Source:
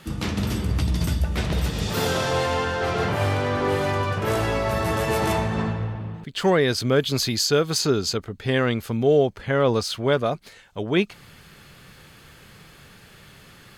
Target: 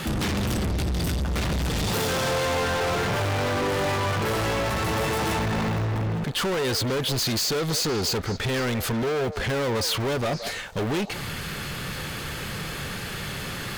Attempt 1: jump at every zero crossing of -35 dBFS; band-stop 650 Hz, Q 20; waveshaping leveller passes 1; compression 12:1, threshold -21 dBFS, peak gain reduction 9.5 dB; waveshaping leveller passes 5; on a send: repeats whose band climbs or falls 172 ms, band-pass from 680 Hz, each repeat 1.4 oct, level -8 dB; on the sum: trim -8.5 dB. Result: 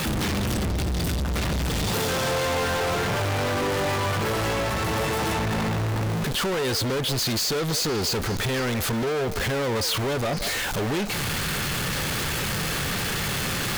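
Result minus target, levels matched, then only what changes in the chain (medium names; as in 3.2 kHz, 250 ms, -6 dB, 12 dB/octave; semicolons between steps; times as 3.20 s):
jump at every zero crossing: distortion +9 dB
change: jump at every zero crossing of -45 dBFS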